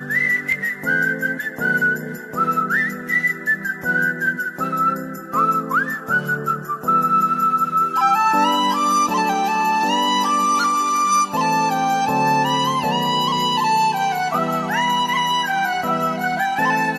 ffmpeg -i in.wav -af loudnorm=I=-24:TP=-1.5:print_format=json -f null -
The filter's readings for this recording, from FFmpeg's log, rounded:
"input_i" : "-18.8",
"input_tp" : "-5.8",
"input_lra" : "2.7",
"input_thresh" : "-28.8",